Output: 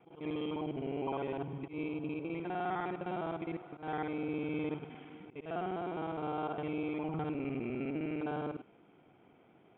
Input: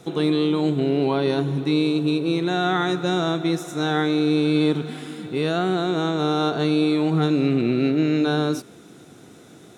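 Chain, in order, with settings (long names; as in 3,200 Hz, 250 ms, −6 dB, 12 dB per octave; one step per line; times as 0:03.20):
reversed piece by piece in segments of 51 ms
Chebyshev low-pass with heavy ripple 3,300 Hz, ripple 9 dB
volume swells 120 ms
level −9 dB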